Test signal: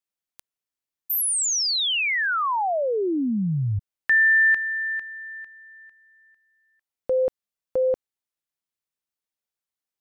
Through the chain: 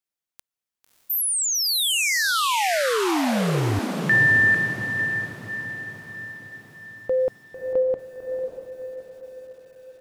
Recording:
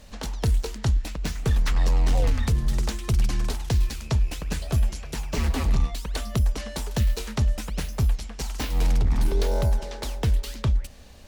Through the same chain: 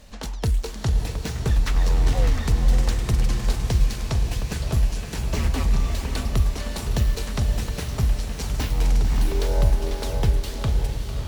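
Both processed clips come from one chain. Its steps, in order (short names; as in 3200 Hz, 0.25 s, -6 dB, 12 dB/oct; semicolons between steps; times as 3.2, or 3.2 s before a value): diffused feedback echo 0.612 s, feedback 50%, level -5 dB; lo-fi delay 0.449 s, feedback 35%, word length 8-bit, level -13.5 dB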